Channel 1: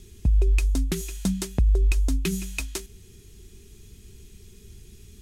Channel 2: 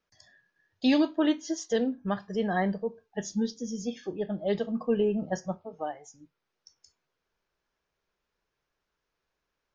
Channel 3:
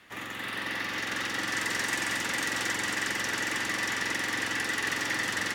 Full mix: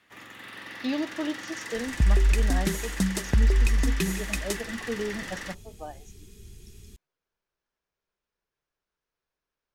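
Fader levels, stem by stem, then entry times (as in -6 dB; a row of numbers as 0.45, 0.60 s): -0.5, -6.0, -8.0 dB; 1.75, 0.00, 0.00 s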